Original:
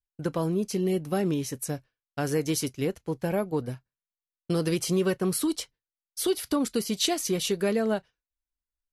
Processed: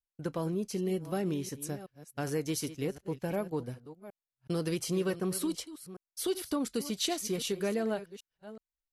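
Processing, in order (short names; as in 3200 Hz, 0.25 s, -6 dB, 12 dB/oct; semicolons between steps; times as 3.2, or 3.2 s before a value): reverse delay 0.373 s, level -14 dB; gain -6 dB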